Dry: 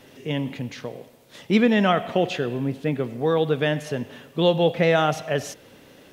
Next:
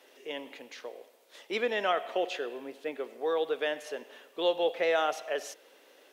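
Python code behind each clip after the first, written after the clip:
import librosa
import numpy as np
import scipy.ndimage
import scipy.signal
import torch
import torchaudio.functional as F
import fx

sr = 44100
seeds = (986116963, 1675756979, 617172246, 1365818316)

y = scipy.signal.sosfilt(scipy.signal.butter(4, 380.0, 'highpass', fs=sr, output='sos'), x)
y = y * librosa.db_to_amplitude(-7.0)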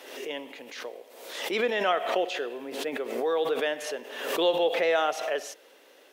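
y = fx.pre_swell(x, sr, db_per_s=56.0)
y = y * librosa.db_to_amplitude(2.5)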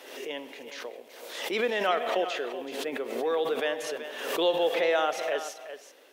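y = x + 10.0 ** (-11.5 / 20.0) * np.pad(x, (int(379 * sr / 1000.0), 0))[:len(x)]
y = y * librosa.db_to_amplitude(-1.0)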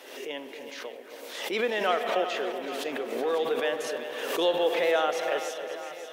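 y = fx.echo_alternate(x, sr, ms=274, hz=1700.0, feedback_pct=74, wet_db=-9.0)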